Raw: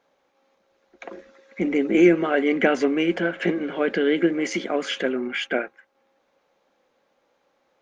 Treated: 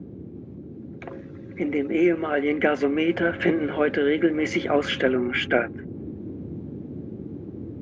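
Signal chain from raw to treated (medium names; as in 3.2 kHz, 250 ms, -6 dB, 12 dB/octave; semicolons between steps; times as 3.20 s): band noise 75–350 Hz -37 dBFS; gain riding 0.5 s; tone controls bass -3 dB, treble -10 dB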